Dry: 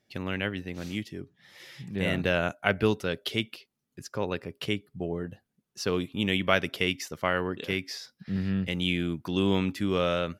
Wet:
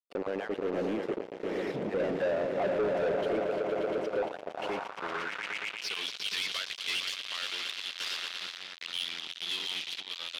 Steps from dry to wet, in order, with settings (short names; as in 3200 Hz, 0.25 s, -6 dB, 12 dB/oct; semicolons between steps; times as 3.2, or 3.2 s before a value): random spectral dropouts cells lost 23%; Doppler pass-by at 2.12, 10 m/s, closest 3.6 m; compressor 12:1, threshold -43 dBFS, peak gain reduction 21 dB; bell 83 Hz -8 dB 2 oct; swelling echo 0.116 s, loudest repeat 5, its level -12.5 dB; random-step tremolo, depth 55%; fuzz box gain 56 dB, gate -59 dBFS; band-pass sweep 490 Hz -> 3700 Hz, 4.22–6.13; soft clip -23 dBFS, distortion -11 dB; gain -2 dB